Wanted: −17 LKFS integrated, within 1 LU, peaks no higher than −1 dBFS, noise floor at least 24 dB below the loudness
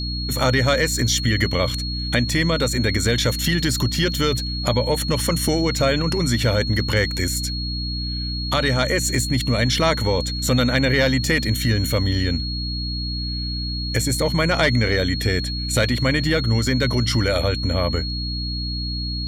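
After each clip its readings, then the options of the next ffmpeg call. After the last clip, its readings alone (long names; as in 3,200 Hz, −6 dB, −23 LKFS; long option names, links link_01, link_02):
mains hum 60 Hz; hum harmonics up to 300 Hz; level of the hum −25 dBFS; interfering tone 4,300 Hz; level of the tone −28 dBFS; integrated loudness −20.5 LKFS; sample peak −4.5 dBFS; target loudness −17.0 LKFS
→ -af "bandreject=frequency=60:width_type=h:width=6,bandreject=frequency=120:width_type=h:width=6,bandreject=frequency=180:width_type=h:width=6,bandreject=frequency=240:width_type=h:width=6,bandreject=frequency=300:width_type=h:width=6"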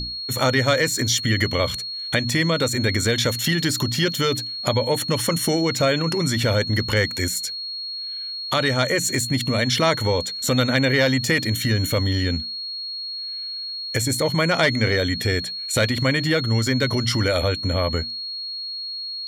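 mains hum none found; interfering tone 4,300 Hz; level of the tone −28 dBFS
→ -af "bandreject=frequency=4300:width=30"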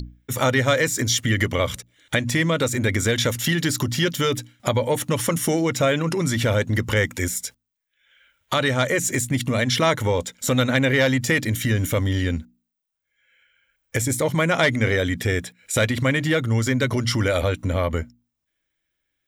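interfering tone none found; integrated loudness −22.0 LKFS; sample peak −5.0 dBFS; target loudness −17.0 LKFS
→ -af "volume=5dB,alimiter=limit=-1dB:level=0:latency=1"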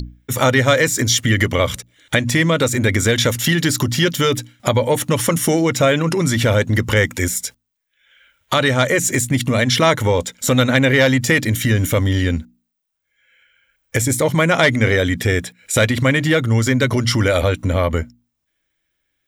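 integrated loudness −17.0 LKFS; sample peak −1.0 dBFS; background noise floor −74 dBFS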